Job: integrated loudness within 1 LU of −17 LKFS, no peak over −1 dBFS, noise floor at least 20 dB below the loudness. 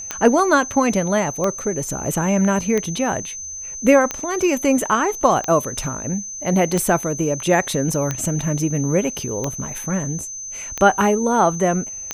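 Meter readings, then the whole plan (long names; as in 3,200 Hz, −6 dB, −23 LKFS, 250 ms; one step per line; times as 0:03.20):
number of clicks 10; interfering tone 6,200 Hz; level of the tone −29 dBFS; integrated loudness −19.5 LKFS; sample peak −1.5 dBFS; target loudness −17.0 LKFS
→ click removal
notch filter 6,200 Hz, Q 30
level +2.5 dB
brickwall limiter −1 dBFS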